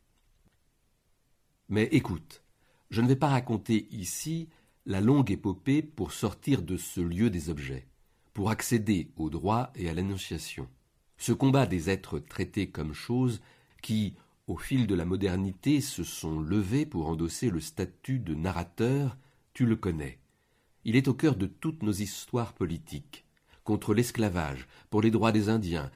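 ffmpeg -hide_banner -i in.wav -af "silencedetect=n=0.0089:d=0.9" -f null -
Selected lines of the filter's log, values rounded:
silence_start: 0.00
silence_end: 1.70 | silence_duration: 1.70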